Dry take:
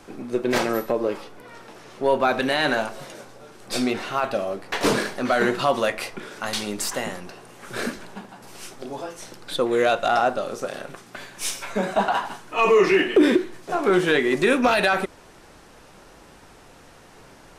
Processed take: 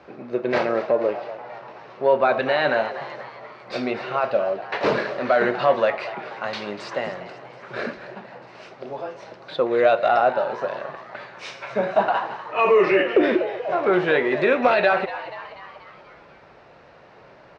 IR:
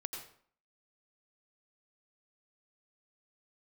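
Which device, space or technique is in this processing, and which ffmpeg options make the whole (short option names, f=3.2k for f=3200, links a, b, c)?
frequency-shifting delay pedal into a guitar cabinet: -filter_complex "[0:a]asplit=7[a][b][c][d][e][f][g];[b]adelay=242,afreqshift=130,volume=-14dB[h];[c]adelay=484,afreqshift=260,volume=-18.7dB[i];[d]adelay=726,afreqshift=390,volume=-23.5dB[j];[e]adelay=968,afreqshift=520,volume=-28.2dB[k];[f]adelay=1210,afreqshift=650,volume=-32.9dB[l];[g]adelay=1452,afreqshift=780,volume=-37.7dB[m];[a][h][i][j][k][l][m]amix=inputs=7:normalize=0,highpass=81,equalizer=f=98:t=q:w=4:g=-5,equalizer=f=200:t=q:w=4:g=-4,equalizer=f=280:t=q:w=4:g=-7,equalizer=f=590:t=q:w=4:g=6,equalizer=f=3.3k:t=q:w=4:g=-7,lowpass=f=3.9k:w=0.5412,lowpass=f=3.9k:w=1.3066"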